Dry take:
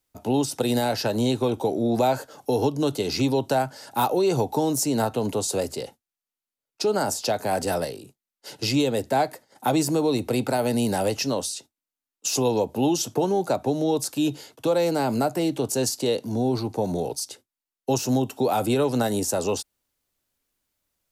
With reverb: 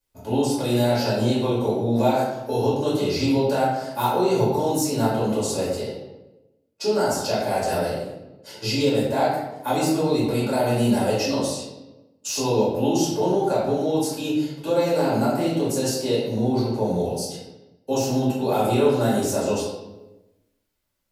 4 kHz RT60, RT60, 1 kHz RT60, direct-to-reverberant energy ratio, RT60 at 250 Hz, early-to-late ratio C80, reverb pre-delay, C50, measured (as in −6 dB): 0.70 s, 1.0 s, 0.90 s, −9.0 dB, 1.3 s, 4.0 dB, 4 ms, 1.0 dB